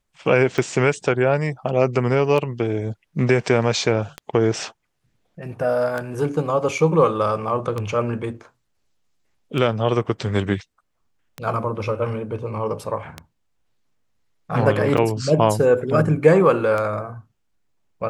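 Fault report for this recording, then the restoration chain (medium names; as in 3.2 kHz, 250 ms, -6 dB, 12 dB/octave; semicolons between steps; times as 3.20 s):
tick 33 1/3 rpm -13 dBFS
14.97–14.98 s: dropout 6 ms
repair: de-click; interpolate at 14.97 s, 6 ms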